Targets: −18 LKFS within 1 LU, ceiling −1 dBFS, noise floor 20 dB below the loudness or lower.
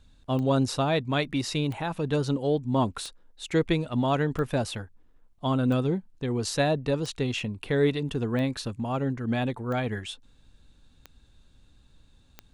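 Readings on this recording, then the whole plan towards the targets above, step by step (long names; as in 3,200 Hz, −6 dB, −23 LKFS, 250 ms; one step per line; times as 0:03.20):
number of clicks 10; integrated loudness −27.5 LKFS; sample peak −12.5 dBFS; target loudness −18.0 LKFS
→ click removal
level +9.5 dB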